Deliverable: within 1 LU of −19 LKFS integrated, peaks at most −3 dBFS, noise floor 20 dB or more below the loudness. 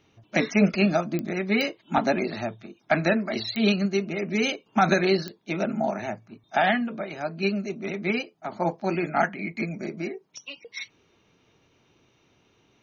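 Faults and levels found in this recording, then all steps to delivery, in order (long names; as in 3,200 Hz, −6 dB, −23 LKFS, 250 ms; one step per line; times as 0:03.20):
number of clicks 4; integrated loudness −26.0 LKFS; sample peak −8.5 dBFS; target loudness −19.0 LKFS
→ click removal
level +7 dB
brickwall limiter −3 dBFS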